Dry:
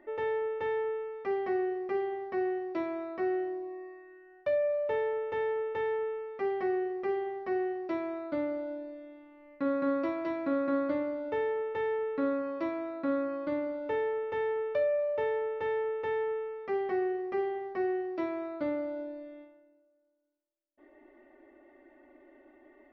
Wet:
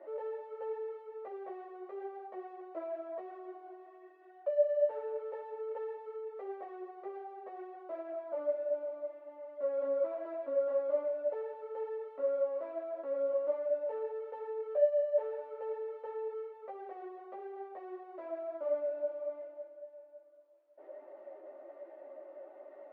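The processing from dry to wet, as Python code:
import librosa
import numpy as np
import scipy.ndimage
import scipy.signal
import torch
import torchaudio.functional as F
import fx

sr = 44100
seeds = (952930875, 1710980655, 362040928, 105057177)

y = fx.power_curve(x, sr, exponent=0.5)
y = fx.ladder_bandpass(y, sr, hz=620.0, resonance_pct=70)
y = fx.ensemble(y, sr)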